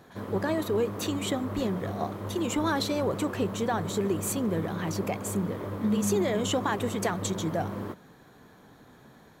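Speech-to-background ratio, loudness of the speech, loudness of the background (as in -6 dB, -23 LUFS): 5.5 dB, -30.5 LUFS, -36.0 LUFS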